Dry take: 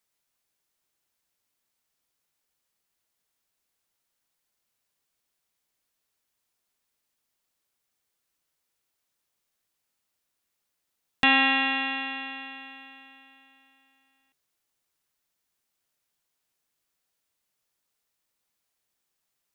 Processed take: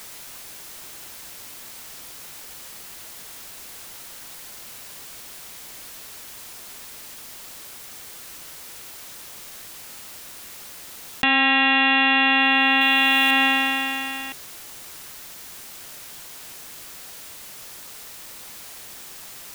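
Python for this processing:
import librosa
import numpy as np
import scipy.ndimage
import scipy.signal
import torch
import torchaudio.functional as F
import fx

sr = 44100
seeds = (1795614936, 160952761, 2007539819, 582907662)

y = fx.high_shelf(x, sr, hz=4400.0, db=11.5, at=(12.81, 13.31))
y = fx.env_flatten(y, sr, amount_pct=100)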